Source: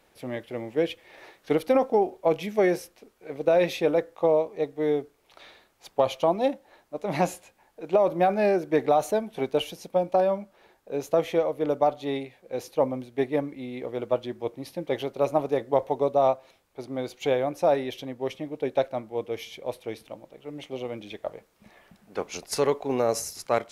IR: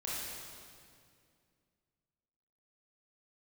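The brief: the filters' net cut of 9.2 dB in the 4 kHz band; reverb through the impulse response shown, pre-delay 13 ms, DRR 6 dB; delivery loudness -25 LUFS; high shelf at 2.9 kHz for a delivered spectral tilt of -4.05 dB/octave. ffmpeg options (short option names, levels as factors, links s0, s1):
-filter_complex "[0:a]highshelf=f=2900:g=-9,equalizer=f=4000:t=o:g=-5.5,asplit=2[s0][s1];[1:a]atrim=start_sample=2205,adelay=13[s2];[s1][s2]afir=irnorm=-1:irlink=0,volume=0.355[s3];[s0][s3]amix=inputs=2:normalize=0,volume=1.19"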